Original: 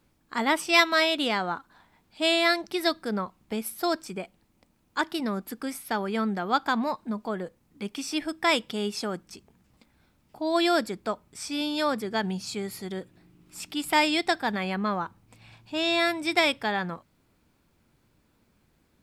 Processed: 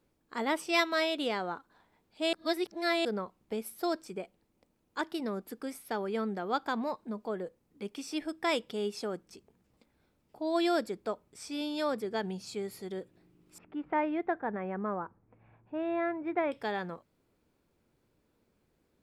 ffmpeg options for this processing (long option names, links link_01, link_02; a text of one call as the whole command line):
ffmpeg -i in.wav -filter_complex "[0:a]asettb=1/sr,asplit=3[link_01][link_02][link_03];[link_01]atrim=end=13.584[link_04];[link_02]atrim=start=13.58:end=16.52,asetpts=PTS-STARTPTS,afade=type=in:duration=0.004:curve=qsin,afade=type=out:start_time=2.936:duration=0.004:curve=qsin,lowpass=frequency=1800:width=0.5412,lowpass=frequency=1800:width=1.3066[link_05];[link_03]atrim=start=16.516[link_06];[link_04][link_05]acrossfade=duration=0.004:curve1=hsin:curve2=qsin[link_07];[link_07][link_06]acrossfade=duration=0.004:curve1=qsin:curve2=hsin,asplit=3[link_08][link_09][link_10];[link_08]atrim=end=2.332[link_11];[link_09]atrim=start=2.328:end=3.052,asetpts=PTS-STARTPTS,areverse[link_12];[link_10]atrim=start=3.048[link_13];[link_11][link_12]acrossfade=duration=0.004:curve1=hsin:curve2=hsin[link_14];[link_14][link_13]acrossfade=duration=0.004:curve1=hsin:curve2=hsin,equalizer=frequency=450:width_type=o:width=1.1:gain=8,volume=-9dB" out.wav